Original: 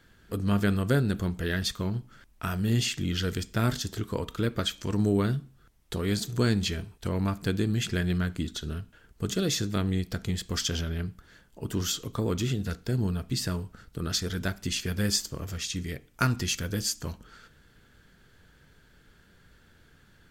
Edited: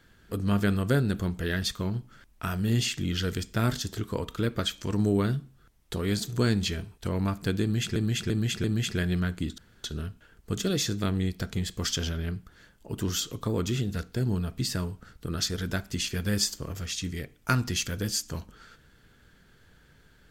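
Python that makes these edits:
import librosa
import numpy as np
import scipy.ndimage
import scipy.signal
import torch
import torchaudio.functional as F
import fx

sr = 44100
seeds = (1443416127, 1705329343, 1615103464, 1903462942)

y = fx.edit(x, sr, fx.repeat(start_s=7.62, length_s=0.34, count=4),
    fx.insert_room_tone(at_s=8.56, length_s=0.26), tone=tone)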